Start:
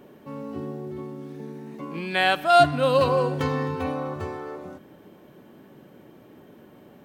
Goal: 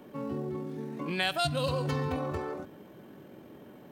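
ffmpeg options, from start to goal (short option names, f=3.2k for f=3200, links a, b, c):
-filter_complex "[0:a]acrossover=split=160|3000[a][b][c];[b]acompressor=threshold=-30dB:ratio=6[d];[a][d][c]amix=inputs=3:normalize=0,atempo=1.8"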